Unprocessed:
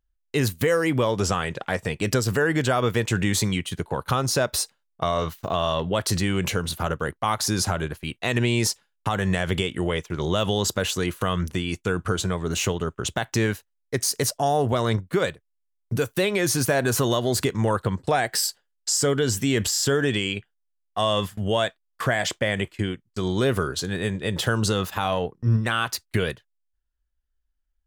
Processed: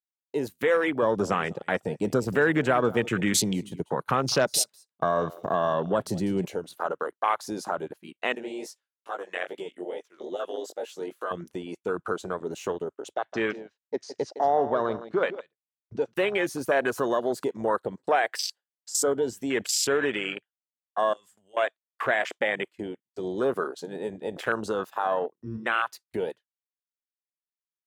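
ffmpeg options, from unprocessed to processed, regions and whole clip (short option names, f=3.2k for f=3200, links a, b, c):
-filter_complex "[0:a]asettb=1/sr,asplit=3[a][b][c];[a]atrim=end=1.024[d];[b]atrim=start=1.02:end=6.45,asetpts=PTS-STARTPTS,afade=t=in:d=0.004:c=qsin,afade=t=out:st=5.426:d=0.004:c=qsin,highpass=110,bass=f=250:g=14,treble=f=4k:g=3,aecho=1:1:198:0.15,atrim=end_sample=239463[e];[c]atrim=start=6.446[f];[d][e]acrossfade=d=0.004:c1=hsin:c2=qsin[g];[g][f]acrossfade=d=0.004:c1=qsin:c2=hsin,asettb=1/sr,asplit=3[h][i][j];[h]atrim=end=8.354[k];[i]atrim=start=8.35:end=11.31,asetpts=PTS-STARTPTS,afade=t=in:d=0.004:c=qsin,afade=t=out:st=2.956:d=0.004:c=qsin,highpass=350,equalizer=f=880:w=3.7:g=-5.5,flanger=delay=15.5:depth=7.1:speed=2.4[l];[j]atrim=start=11.306[m];[k][l]acrossfade=d=0.004:c1=hsin:c2=qsin[n];[n][m]acrossfade=d=0.004:c1=qsin:c2=hsin,asettb=1/sr,asplit=3[o][p][q];[o]atrim=end=13.144[r];[p]atrim=start=13.14:end=16.14,asetpts=PTS-STARTPTS,afade=t=in:d=0.004:c=qsin,afade=t=out:st=2.996:d=0.004:c=qsin,lowpass=f=5.6k:w=0.5412,lowpass=f=5.6k:w=1.3066,aecho=1:1:161:0.266,atrim=end_sample=132300[s];[q]atrim=start=16.136[t];[r][s]acrossfade=d=0.004:c1=hsin:c2=qsin[u];[u][t]acrossfade=d=0.004:c1=qsin:c2=hsin,asettb=1/sr,asplit=3[v][w][x];[v]atrim=end=21.134[y];[w]atrim=start=21.13:end=21.57,asetpts=PTS-STARTPTS,afade=t=in:d=0.004:c=qsin,afade=t=out:st=0.436:d=0.004:c=qsin,equalizer=f=7.8k:t=o:w=0.74:g=14,acompressor=threshold=-36dB:ratio=8:attack=3.2:release=140:knee=1:detection=peak[z];[x]atrim=start=21.566[aa];[y][z]acrossfade=d=0.004:c1=hsin:c2=qsin[ab];[ab][aa]acrossfade=d=0.004:c1=qsin:c2=hsin,highpass=360,afwtdn=0.0398"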